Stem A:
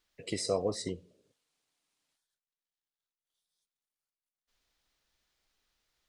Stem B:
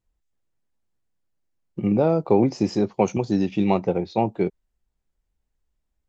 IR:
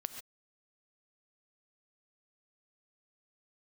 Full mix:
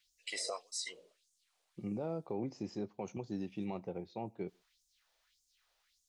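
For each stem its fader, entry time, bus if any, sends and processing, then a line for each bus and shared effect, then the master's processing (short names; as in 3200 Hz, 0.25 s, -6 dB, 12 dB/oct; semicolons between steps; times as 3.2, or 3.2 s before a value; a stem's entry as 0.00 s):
+1.5 dB, 0.00 s, no send, LFO high-pass sine 1.7 Hz 560–7000 Hz
-18.5 dB, 0.00 s, send -22 dB, dry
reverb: on, pre-delay 3 ms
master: limiter -29 dBFS, peak gain reduction 10.5 dB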